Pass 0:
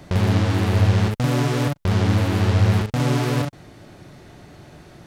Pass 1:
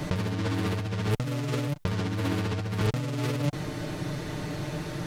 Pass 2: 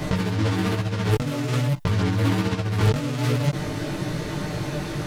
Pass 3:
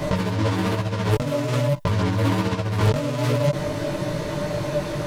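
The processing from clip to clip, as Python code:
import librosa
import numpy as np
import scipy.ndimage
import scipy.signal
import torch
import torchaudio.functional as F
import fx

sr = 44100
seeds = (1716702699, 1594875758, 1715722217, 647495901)

y1 = x + 0.57 * np.pad(x, (int(6.6 * sr / 1000.0), 0))[:len(x)]
y1 = fx.over_compress(y1, sr, threshold_db=-28.0, ratio=-1.0)
y1 = fx.notch(y1, sr, hz=730.0, q=12.0)
y2 = fx.chorus_voices(y1, sr, voices=2, hz=1.2, base_ms=18, depth_ms=3.0, mix_pct=45)
y2 = F.gain(torch.from_numpy(y2), 8.5).numpy()
y3 = fx.small_body(y2, sr, hz=(590.0, 980.0), ring_ms=50, db=12)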